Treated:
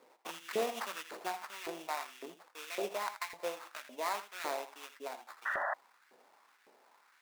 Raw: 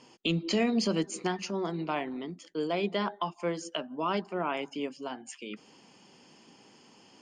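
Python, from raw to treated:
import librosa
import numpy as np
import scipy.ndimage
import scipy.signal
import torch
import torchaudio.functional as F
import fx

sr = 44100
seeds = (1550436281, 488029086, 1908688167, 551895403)

p1 = fx.low_shelf(x, sr, hz=120.0, db=10.0)
p2 = p1 + fx.echo_single(p1, sr, ms=81, db=-10.5, dry=0)
p3 = fx.sample_hold(p2, sr, seeds[0], rate_hz=3100.0, jitter_pct=20)
p4 = fx.spec_paint(p3, sr, seeds[1], shape='noise', start_s=5.45, length_s=0.29, low_hz=540.0, high_hz=2000.0, level_db=-29.0)
p5 = fx.filter_lfo_highpass(p4, sr, shape='saw_up', hz=1.8, low_hz=440.0, high_hz=1800.0, q=2.0)
y = F.gain(torch.from_numpy(p5), -8.0).numpy()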